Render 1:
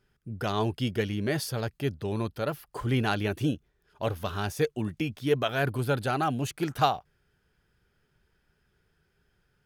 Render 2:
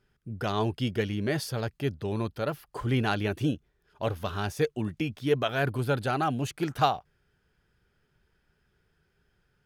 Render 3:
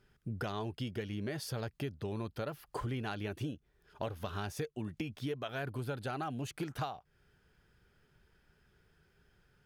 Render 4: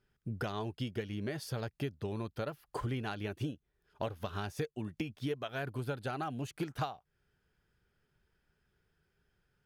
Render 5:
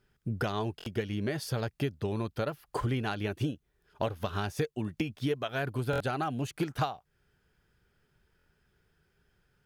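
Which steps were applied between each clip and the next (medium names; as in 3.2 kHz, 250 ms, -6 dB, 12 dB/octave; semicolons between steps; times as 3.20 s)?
treble shelf 8.8 kHz -5.5 dB
compression 10:1, threshold -37 dBFS, peak gain reduction 19 dB; trim +2 dB
upward expansion 1.5:1, over -54 dBFS; trim +2.5 dB
buffer glitch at 0.77/5.91/8.37 s, samples 1024, times 3; trim +5.5 dB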